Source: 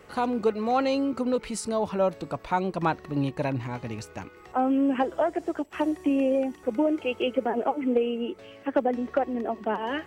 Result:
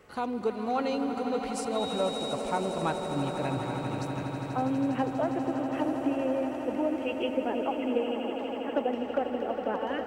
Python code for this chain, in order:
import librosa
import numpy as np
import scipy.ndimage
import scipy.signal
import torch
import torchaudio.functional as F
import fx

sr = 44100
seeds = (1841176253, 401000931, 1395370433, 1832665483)

y = fx.dmg_tone(x, sr, hz=3800.0, level_db=-32.0, at=(1.75, 2.33), fade=0.02)
y = fx.echo_swell(y, sr, ms=81, loudest=8, wet_db=-12)
y = F.gain(torch.from_numpy(y), -5.5).numpy()